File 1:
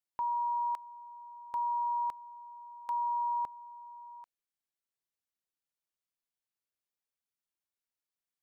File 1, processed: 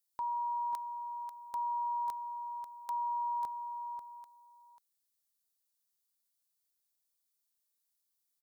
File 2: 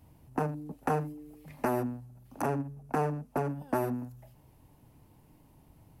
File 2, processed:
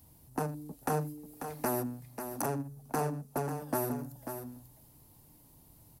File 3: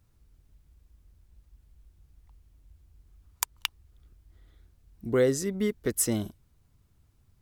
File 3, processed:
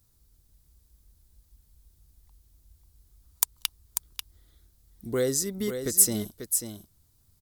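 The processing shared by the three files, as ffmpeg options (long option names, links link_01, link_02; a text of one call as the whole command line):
ffmpeg -i in.wav -af "aecho=1:1:541:0.376,acontrast=80,aexciter=amount=3.4:drive=5.2:freq=3700,volume=-10dB" out.wav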